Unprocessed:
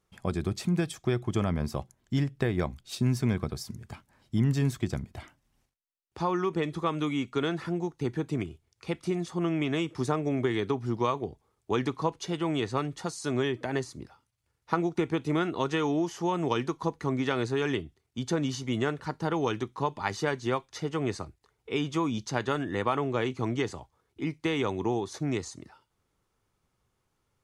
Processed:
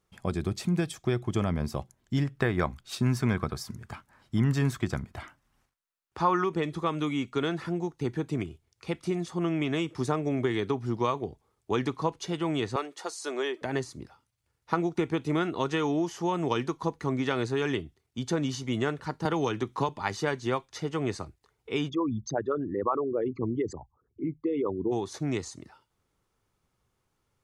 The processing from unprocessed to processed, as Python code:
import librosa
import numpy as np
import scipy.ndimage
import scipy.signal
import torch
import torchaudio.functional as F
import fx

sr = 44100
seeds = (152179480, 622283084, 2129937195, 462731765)

y = fx.peak_eq(x, sr, hz=1300.0, db=8.0, octaves=1.3, at=(2.25, 6.44))
y = fx.highpass(y, sr, hz=350.0, slope=24, at=(12.76, 13.62))
y = fx.band_squash(y, sr, depth_pct=100, at=(19.25, 19.89))
y = fx.envelope_sharpen(y, sr, power=3.0, at=(21.88, 24.91), fade=0.02)